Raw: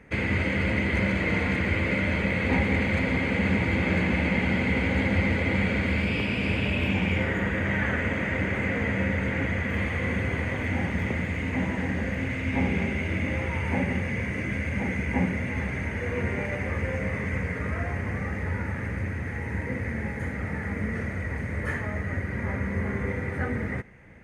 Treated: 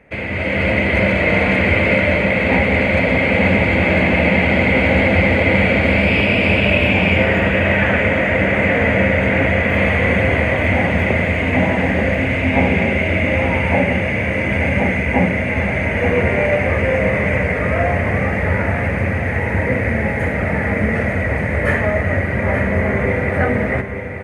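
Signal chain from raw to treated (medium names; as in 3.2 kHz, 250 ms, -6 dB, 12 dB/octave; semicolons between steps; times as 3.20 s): fifteen-band graphic EQ 630 Hz +11 dB, 2.5 kHz +6 dB, 6.3 kHz -5 dB; level rider gain up to 11.5 dB; delay 881 ms -8.5 dB; trim -1 dB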